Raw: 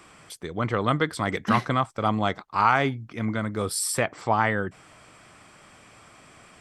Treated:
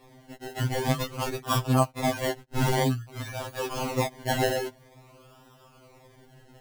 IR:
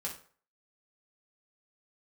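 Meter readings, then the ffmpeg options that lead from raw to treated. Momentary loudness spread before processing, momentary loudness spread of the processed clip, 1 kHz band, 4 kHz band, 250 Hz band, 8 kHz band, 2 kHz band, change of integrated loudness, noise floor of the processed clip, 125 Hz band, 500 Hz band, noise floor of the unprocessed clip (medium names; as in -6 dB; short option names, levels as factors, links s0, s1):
9 LU, 11 LU, -6.0 dB, +1.0 dB, -2.5 dB, -4.5 dB, -6.5 dB, -3.0 dB, -56 dBFS, +1.5 dB, -1.0 dB, -53 dBFS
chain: -af "acrusher=samples=29:mix=1:aa=0.000001:lfo=1:lforange=17.4:lforate=0.5,afftfilt=real='re*2.45*eq(mod(b,6),0)':imag='im*2.45*eq(mod(b,6),0)':win_size=2048:overlap=0.75"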